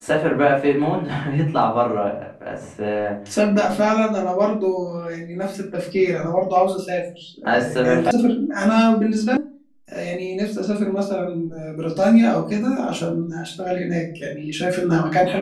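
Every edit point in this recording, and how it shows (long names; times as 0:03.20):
0:08.11: cut off before it has died away
0:09.37: cut off before it has died away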